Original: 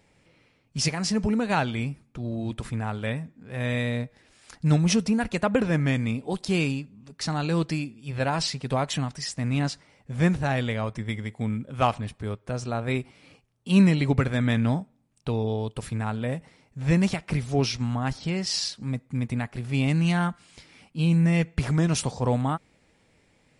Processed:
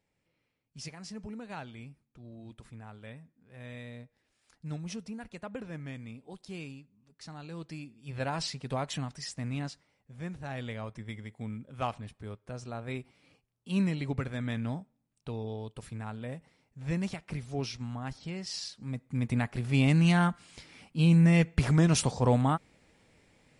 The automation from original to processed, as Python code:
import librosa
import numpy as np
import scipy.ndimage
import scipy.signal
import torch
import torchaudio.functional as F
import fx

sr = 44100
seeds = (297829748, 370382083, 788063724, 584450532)

y = fx.gain(x, sr, db=fx.line((7.58, -17.5), (8.09, -7.5), (9.39, -7.5), (10.24, -18.0), (10.67, -10.5), (18.69, -10.5), (19.37, -0.5)))